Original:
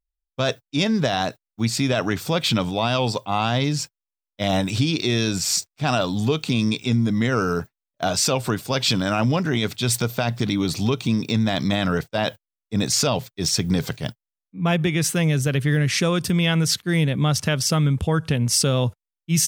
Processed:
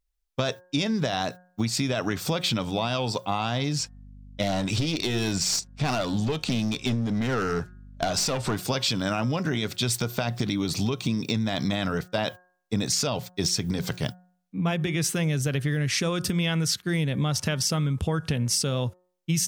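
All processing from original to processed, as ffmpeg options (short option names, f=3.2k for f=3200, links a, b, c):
-filter_complex "[0:a]asettb=1/sr,asplit=3[a][b][c];[a]atrim=end=3.794[d];[b]atrim=start=3.79:end=8.56,asetpts=PTS-STARTPTS,afade=t=in:d=0.004:c=qsin,afade=t=out:st=4.766:d=0.004:c=qsin,lowpass=8.5k,aeval=exprs='clip(val(0),-1,0.0891)':c=same,aeval=exprs='val(0)+0.00316*(sin(2*PI*50*n/s)+sin(2*PI*2*50*n/s)/2+sin(2*PI*3*50*n/s)/3+sin(2*PI*4*50*n/s)/4+sin(2*PI*5*50*n/s)/5)':c=same[e];[c]atrim=start=8.556[f];[d][e]acrossfade=d=0.004:c1=hsin:c2=qsin[g];[g][f]acrossfade=d=0.004:c1=qsin:c2=hsin,equalizer=f=5.6k:t=o:w=0.77:g=2,acompressor=threshold=-29dB:ratio=6,bandreject=f=180.7:t=h:w=4,bandreject=f=361.4:t=h:w=4,bandreject=f=542.1:t=h:w=4,bandreject=f=722.8:t=h:w=4,bandreject=f=903.5:t=h:w=4,bandreject=f=1.0842k:t=h:w=4,bandreject=f=1.2649k:t=h:w=4,bandreject=f=1.4456k:t=h:w=4,bandreject=f=1.6263k:t=h:w=4,bandreject=f=1.807k:t=h:w=4,volume=5.5dB"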